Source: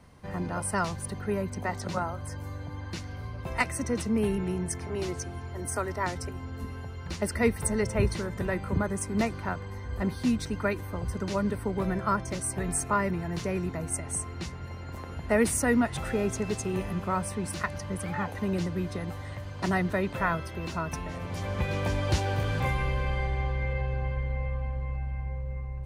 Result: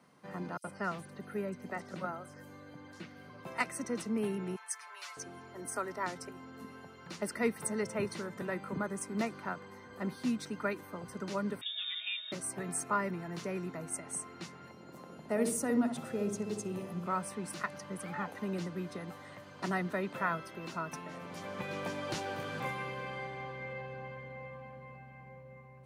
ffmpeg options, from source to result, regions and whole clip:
-filter_complex "[0:a]asettb=1/sr,asplit=3[a][b][c];[a]atrim=end=0.574[d];[b]atrim=start=0.57:end=3.3,asetpts=PTS-STARTPTS,afade=t=in:d=0.004:c=qsin,afade=t=out:st=2.726:d=0.004:c=qsin,acrossover=split=3200[e][f];[f]acompressor=threshold=-49dB:ratio=4:attack=1:release=60[g];[e][g]amix=inputs=2:normalize=0,equalizer=f=980:t=o:w=0.61:g=-6.5,acrossover=split=4900[h][i];[h]adelay=70[j];[j][i]amix=inputs=2:normalize=0,atrim=end_sample=120393[k];[c]atrim=start=3.296[l];[d][k]acrossfade=d=0.004:c1=hsin:c2=qsin[m];[m][l]acrossfade=d=0.004:c1=qsin:c2=hsin,asettb=1/sr,asplit=3[n][o][p];[n]atrim=end=4.564[q];[o]atrim=start=4.56:end=5.17,asetpts=PTS-STARTPTS,afade=t=in:d=0.004:c=qsin,afade=t=out:st=0.606:d=0.004:c=qsin,highpass=f=950:w=0.5412,highpass=f=950:w=1.3066,aecho=1:1:6.9:0.82,atrim=end_sample=26901[r];[p]atrim=start=5.166[s];[q][r]acrossfade=d=0.004:c1=hsin:c2=qsin[t];[t][s]acrossfade=d=0.004:c1=qsin:c2=hsin,asettb=1/sr,asplit=3[u][v][w];[u]atrim=end=11.614[x];[v]atrim=start=11.61:end=12.32,asetpts=PTS-STARTPTS,afade=t=in:d=0.004:c=qsin,afade=t=out:st=0.706:d=0.004:c=qsin,acrossover=split=400|1400[y][z][aa];[y]acompressor=threshold=-31dB:ratio=4[ab];[z]acompressor=threshold=-40dB:ratio=4[ac];[aa]acompressor=threshold=-33dB:ratio=4[ad];[ab][ac][ad]amix=inputs=3:normalize=0,lowpass=f=3.2k:t=q:w=0.5098,lowpass=f=3.2k:t=q:w=0.6013,lowpass=f=3.2k:t=q:w=0.9,lowpass=f=3.2k:t=q:w=2.563,afreqshift=-3800[ae];[w]atrim=start=12.316[af];[x][ae]acrossfade=d=0.004:c1=hsin:c2=qsin[ag];[ag][af]acrossfade=d=0.004:c1=qsin:c2=hsin,asettb=1/sr,asplit=3[ah][ai][aj];[ah]atrim=end=14.714[ak];[ai]atrim=start=14.71:end=17.06,asetpts=PTS-STARTPTS,afade=t=in:d=0.004:c=qsin,afade=t=out:st=2.346:d=0.004:c=qsin,equalizer=f=1.7k:w=0.71:g=-7.5,asplit=2[al][am];[am]adelay=63,lowpass=f=840:p=1,volume=-4.5dB,asplit=2[an][ao];[ao]adelay=63,lowpass=f=840:p=1,volume=0.47,asplit=2[ap][aq];[aq]adelay=63,lowpass=f=840:p=1,volume=0.47,asplit=2[ar][as];[as]adelay=63,lowpass=f=840:p=1,volume=0.47,asplit=2[at][au];[au]adelay=63,lowpass=f=840:p=1,volume=0.47,asplit=2[av][aw];[aw]adelay=63,lowpass=f=840:p=1,volume=0.47[ax];[al][an][ap][ar][at][av][ax]amix=inputs=7:normalize=0,atrim=end_sample=103635[ay];[aj]atrim=start=17.056[az];[ak][ay]acrossfade=d=0.004:c1=hsin:c2=qsin[ba];[ba][az]acrossfade=d=0.004:c1=qsin:c2=hsin,highpass=f=160:w=0.5412,highpass=f=160:w=1.3066,equalizer=f=1.3k:t=o:w=0.37:g=4,volume=-6.5dB"

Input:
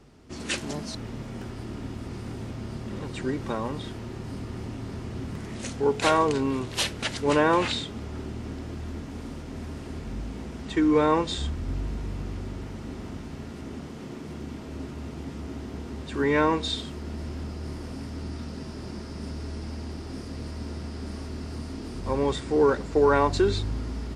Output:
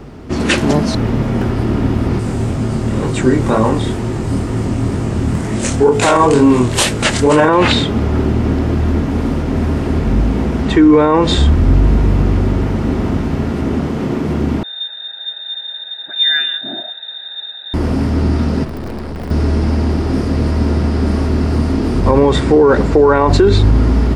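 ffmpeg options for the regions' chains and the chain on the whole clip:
-filter_complex "[0:a]asettb=1/sr,asplit=3[a][b][c];[a]atrim=end=2.194[d];[b]atrim=start=2.19:end=7.49,asetpts=PTS-STARTPTS,afade=t=in:d=0.004:c=qsin,afade=t=out:st=5.296:d=0.004:c=qsin,equalizer=f=8k:w=1.4:g=13.5,flanger=delay=18.5:depth=7.6:speed=2.1[e];[c]atrim=start=7.486[f];[d][e]acrossfade=d=0.004:c1=hsin:c2=qsin[g];[g][f]acrossfade=d=0.004:c1=qsin:c2=hsin,asettb=1/sr,asplit=3[h][i][j];[h]atrim=end=14.634[k];[i]atrim=start=14.63:end=17.74,asetpts=PTS-STARTPTS,afade=t=in:d=0.004:c=qsin,afade=t=out:st=3.106:d=0.004:c=qsin,asplit=3[l][m][n];[l]bandpass=f=270:t=q:w=8,volume=0dB[o];[m]bandpass=f=2.29k:t=q:w=8,volume=-6dB[p];[n]bandpass=f=3.01k:t=q:w=8,volume=-9dB[q];[o][p][q]amix=inputs=3:normalize=0,aecho=1:1:0.9:0.9,atrim=end_sample=137151,lowpass=f=3.3k:t=q:w=0.5098,lowpass=f=3.3k:t=q:w=0.6013,lowpass=f=3.3k:t=q:w=0.9,lowpass=f=3.3k:t=q:w=2.563,afreqshift=-3900[r];[j]atrim=start=17.736[s];[k][r]acrossfade=d=0.004:c1=hsin:c2=qsin[t];[t][s]acrossfade=d=0.004:c1=qsin:c2=hsin,asettb=1/sr,asplit=3[u][v][w];[u]atrim=end=18.644[x];[v]atrim=start=18.64:end=19.31,asetpts=PTS-STARTPTS,afade=t=in:d=0.004:c=qsin,afade=t=out:st=0.666:d=0.004:c=qsin,equalizer=f=6.1k:w=5.3:g=-14,aeval=exprs='(mod(23.7*val(0)+1,2)-1)/23.7':c=same,aeval=exprs='(tanh(141*val(0)+0.6)-tanh(0.6))/141':c=same[y];[w]atrim=start=19.306[z];[x][y]acrossfade=d=0.004:c1=hsin:c2=qsin[aa];[aa][z]acrossfade=d=0.004:c1=qsin:c2=hsin,equalizer=f=7.7k:t=o:w=2.7:g=-10.5,alimiter=level_in=22dB:limit=-1dB:release=50:level=0:latency=1,volume=-1dB"

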